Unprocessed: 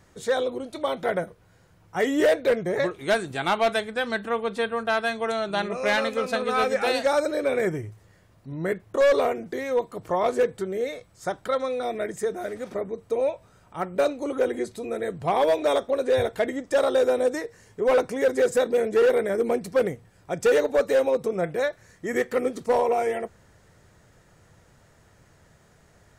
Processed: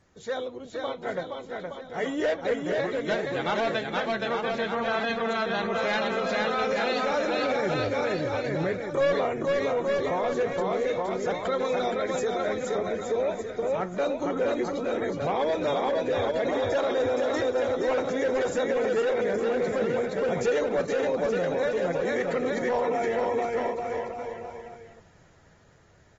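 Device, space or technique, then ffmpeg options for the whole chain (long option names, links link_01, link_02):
low-bitrate web radio: -filter_complex "[0:a]asettb=1/sr,asplit=3[link_01][link_02][link_03];[link_01]atrim=end=11.644[link_04];[link_02]atrim=start=11.64:end=12.34,asetpts=PTS-STARTPTS,afade=type=in:duration=0.004:curve=qsin,afade=type=out:start_time=0.696:duration=0.004:curve=qsin,highshelf=frequency=3100:gain=5.5[link_05];[link_03]atrim=start=12.336[link_06];[link_04][link_05]acrossfade=duration=0.004:curve1=hsin:curve2=qsin[link_07];[link_07][link_06]acrossfade=duration=0.004:curve1=qsin:curve2=hsin,aecho=1:1:470|869.5|1209|1498|1743:0.631|0.398|0.251|0.158|0.1,dynaudnorm=framelen=820:gausssize=11:maxgain=13dB,alimiter=limit=-12dB:level=0:latency=1:release=21,volume=-7.5dB" -ar 48000 -c:a aac -b:a 24k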